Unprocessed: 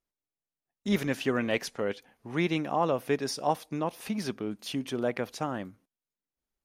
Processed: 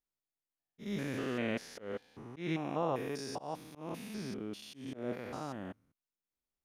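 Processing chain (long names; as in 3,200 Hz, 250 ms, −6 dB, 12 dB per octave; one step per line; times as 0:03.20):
spectrum averaged block by block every 200 ms
volume swells 158 ms
level −4 dB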